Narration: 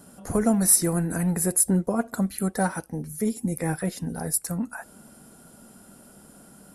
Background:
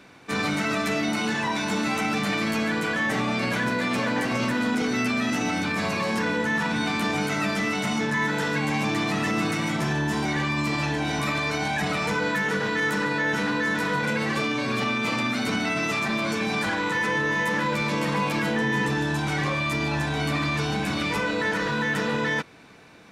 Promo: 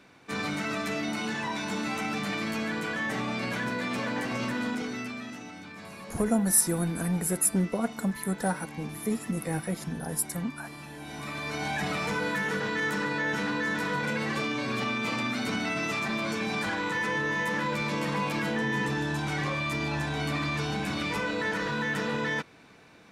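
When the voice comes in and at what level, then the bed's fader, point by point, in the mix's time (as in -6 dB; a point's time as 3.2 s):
5.85 s, -4.0 dB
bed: 4.66 s -6 dB
5.52 s -18 dB
10.86 s -18 dB
11.69 s -4.5 dB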